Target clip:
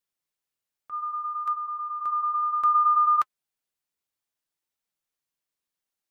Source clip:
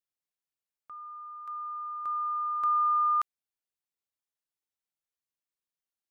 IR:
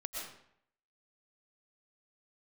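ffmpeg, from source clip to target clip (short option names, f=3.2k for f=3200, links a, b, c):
-filter_complex "[0:a]asplit=3[a][b][c];[a]afade=t=out:st=0.92:d=0.02[d];[b]acontrast=84,afade=t=in:st=0.92:d=0.02,afade=t=out:st=1.52:d=0.02[e];[c]afade=t=in:st=1.52:d=0.02[f];[d][e][f]amix=inputs=3:normalize=0,flanger=delay=4.1:depth=6.1:regen=-51:speed=0.62:shape=triangular,volume=9dB"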